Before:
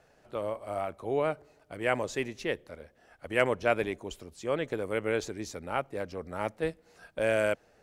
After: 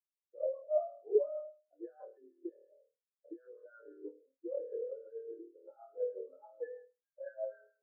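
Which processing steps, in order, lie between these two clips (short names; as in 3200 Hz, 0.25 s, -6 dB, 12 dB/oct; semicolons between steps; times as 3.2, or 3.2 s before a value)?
G.711 law mismatch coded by A; steep high-pass 290 Hz 48 dB/oct; dynamic EQ 390 Hz, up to -7 dB, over -41 dBFS, Q 0.86; flutter echo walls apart 4.5 m, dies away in 0.77 s; compressor 10:1, threshold -33 dBFS, peak gain reduction 12.5 dB; limiter -29.5 dBFS, peak gain reduction 9 dB; rotary speaker horn 6.3 Hz; transient shaper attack +3 dB, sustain +8 dB; brick-wall FIR low-pass 1800 Hz; spectral expander 4:1; gain +10.5 dB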